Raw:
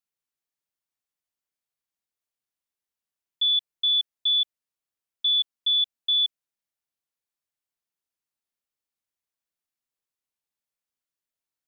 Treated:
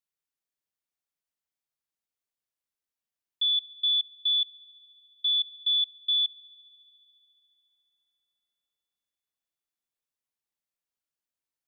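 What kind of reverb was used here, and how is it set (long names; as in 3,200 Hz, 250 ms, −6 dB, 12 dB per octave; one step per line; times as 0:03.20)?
spring reverb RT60 3.5 s, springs 42 ms, chirp 75 ms, DRR 20 dB
level −3 dB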